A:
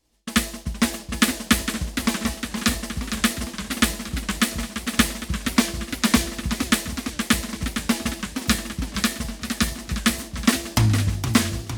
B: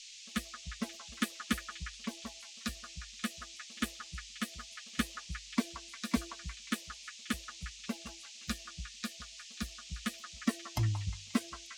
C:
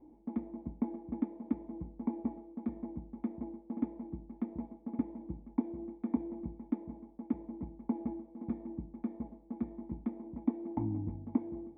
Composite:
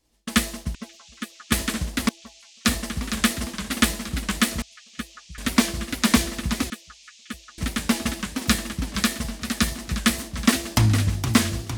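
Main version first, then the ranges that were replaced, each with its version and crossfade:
A
0:00.75–0:01.52: punch in from B
0:02.09–0:02.65: punch in from B
0:04.62–0:05.38: punch in from B
0:06.70–0:07.58: punch in from B
not used: C

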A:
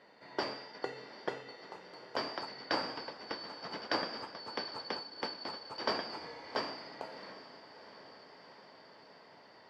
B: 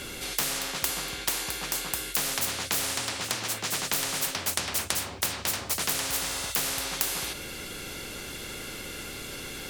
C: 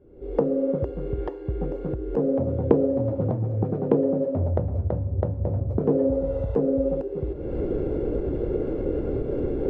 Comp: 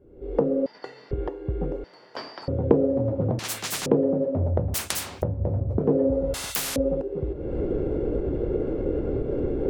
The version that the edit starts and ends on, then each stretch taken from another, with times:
C
0:00.66–0:01.11: punch in from A
0:01.84–0:02.48: punch in from A
0:03.39–0:03.86: punch in from B
0:04.74–0:05.22: punch in from B
0:06.34–0:06.76: punch in from B

